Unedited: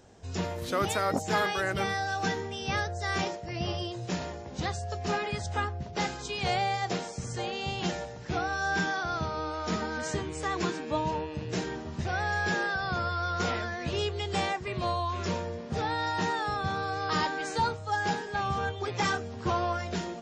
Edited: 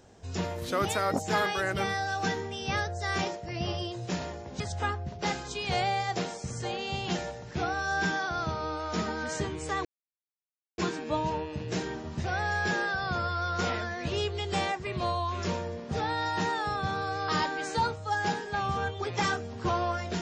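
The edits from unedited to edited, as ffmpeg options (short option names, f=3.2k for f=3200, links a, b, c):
-filter_complex "[0:a]asplit=3[a][b][c];[a]atrim=end=4.602[d];[b]atrim=start=5.338:end=10.59,asetpts=PTS-STARTPTS,afade=t=out:st=5.248:d=0.004:c=hsin,apad=pad_dur=0.93[e];[c]atrim=start=10.59,asetpts=PTS-STARTPTS,afade=t=in:d=0.004:c=hsin[f];[e][f]concat=n=2:v=0:a=1[g];[d][g]acrossfade=d=0.004:c1=hsin:c2=hsin"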